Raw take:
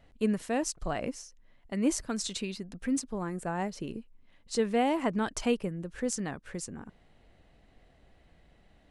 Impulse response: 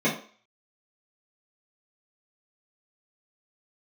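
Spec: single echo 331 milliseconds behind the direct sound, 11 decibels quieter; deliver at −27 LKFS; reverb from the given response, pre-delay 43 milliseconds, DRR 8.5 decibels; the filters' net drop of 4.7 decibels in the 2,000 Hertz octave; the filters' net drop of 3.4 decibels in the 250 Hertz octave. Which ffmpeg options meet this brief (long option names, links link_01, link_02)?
-filter_complex "[0:a]equalizer=frequency=250:width_type=o:gain=-4,equalizer=frequency=2000:width_type=o:gain=-6,aecho=1:1:331:0.282,asplit=2[link_01][link_02];[1:a]atrim=start_sample=2205,adelay=43[link_03];[link_02][link_03]afir=irnorm=-1:irlink=0,volume=-23dB[link_04];[link_01][link_04]amix=inputs=2:normalize=0,volume=5.5dB"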